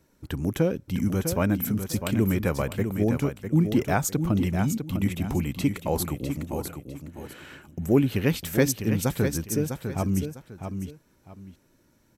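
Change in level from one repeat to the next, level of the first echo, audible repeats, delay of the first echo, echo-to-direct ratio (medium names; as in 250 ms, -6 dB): -11.5 dB, -7.5 dB, 2, 652 ms, -7.0 dB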